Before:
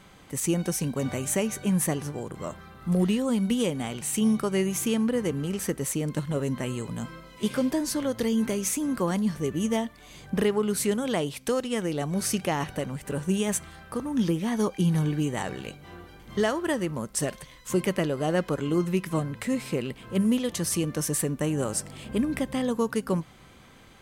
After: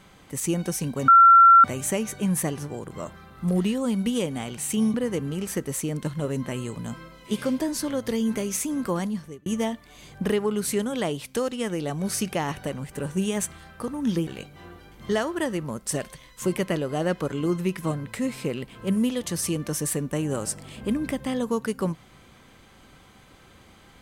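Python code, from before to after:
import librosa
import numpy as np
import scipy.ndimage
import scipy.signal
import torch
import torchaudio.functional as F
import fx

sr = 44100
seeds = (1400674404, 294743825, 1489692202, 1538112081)

y = fx.edit(x, sr, fx.insert_tone(at_s=1.08, length_s=0.56, hz=1360.0, db=-9.0),
    fx.cut(start_s=4.38, length_s=0.68),
    fx.fade_out_span(start_s=9.08, length_s=0.5),
    fx.cut(start_s=14.39, length_s=1.16), tone=tone)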